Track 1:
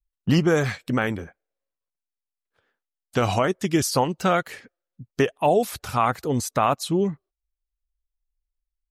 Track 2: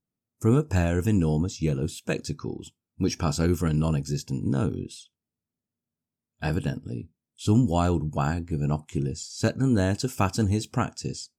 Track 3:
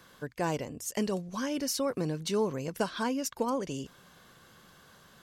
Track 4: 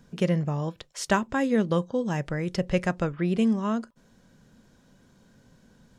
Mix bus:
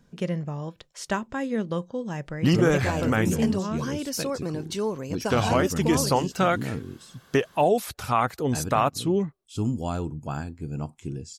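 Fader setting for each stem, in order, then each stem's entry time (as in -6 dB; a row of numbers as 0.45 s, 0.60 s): -1.5 dB, -6.0 dB, +1.0 dB, -4.0 dB; 2.15 s, 2.10 s, 2.45 s, 0.00 s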